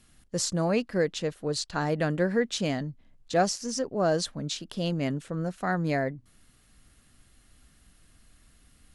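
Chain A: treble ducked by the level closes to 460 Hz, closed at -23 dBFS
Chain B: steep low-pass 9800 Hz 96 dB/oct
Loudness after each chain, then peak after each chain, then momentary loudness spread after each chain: -31.5, -29.0 LUFS; -15.5, -12.5 dBFS; 8, 8 LU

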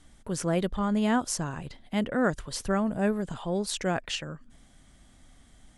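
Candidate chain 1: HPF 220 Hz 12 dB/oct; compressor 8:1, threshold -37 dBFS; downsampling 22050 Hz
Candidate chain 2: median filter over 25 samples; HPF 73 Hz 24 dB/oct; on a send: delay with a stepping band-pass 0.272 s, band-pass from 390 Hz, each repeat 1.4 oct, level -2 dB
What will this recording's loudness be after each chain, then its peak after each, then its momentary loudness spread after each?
-41.5, -29.5 LUFS; -21.5, -16.0 dBFS; 21, 11 LU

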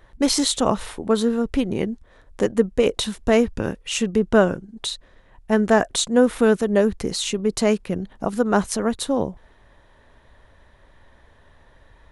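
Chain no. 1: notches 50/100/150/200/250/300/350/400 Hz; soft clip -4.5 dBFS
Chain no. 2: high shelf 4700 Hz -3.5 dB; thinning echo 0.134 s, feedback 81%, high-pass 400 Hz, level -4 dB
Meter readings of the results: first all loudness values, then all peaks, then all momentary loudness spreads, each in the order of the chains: -22.5, -20.5 LUFS; -6.0, -2.5 dBFS; 10, 12 LU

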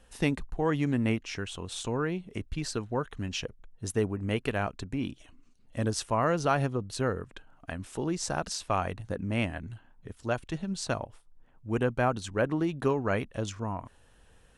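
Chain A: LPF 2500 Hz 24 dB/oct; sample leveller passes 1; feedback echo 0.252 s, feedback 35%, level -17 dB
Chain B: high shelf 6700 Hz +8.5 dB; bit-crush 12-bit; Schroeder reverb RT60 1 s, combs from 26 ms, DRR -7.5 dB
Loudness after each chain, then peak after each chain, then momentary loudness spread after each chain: -29.0, -23.0 LUFS; -13.0, -5.5 dBFS; 13, 12 LU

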